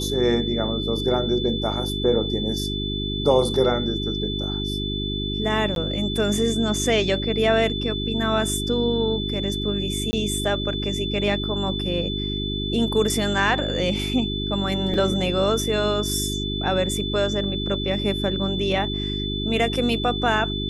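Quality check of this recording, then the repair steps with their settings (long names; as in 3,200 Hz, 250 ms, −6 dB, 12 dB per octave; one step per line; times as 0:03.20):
mains hum 50 Hz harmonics 8 −28 dBFS
whistle 3,500 Hz −29 dBFS
0:05.75–0:05.76: drop-out 12 ms
0:10.11–0:10.13: drop-out 20 ms
0:14.94: drop-out 2.3 ms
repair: notch filter 3,500 Hz, Q 30
hum removal 50 Hz, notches 8
repair the gap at 0:05.75, 12 ms
repair the gap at 0:10.11, 20 ms
repair the gap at 0:14.94, 2.3 ms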